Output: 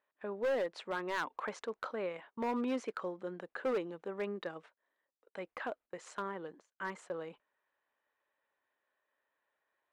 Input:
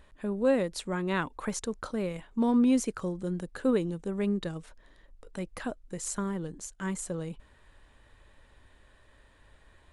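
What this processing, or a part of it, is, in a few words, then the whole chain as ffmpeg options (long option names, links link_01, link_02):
walkie-talkie: -af "highpass=540,lowpass=2300,asoftclip=type=hard:threshold=-30dB,agate=range=-19dB:threshold=-55dB:ratio=16:detection=peak,volume=1dB"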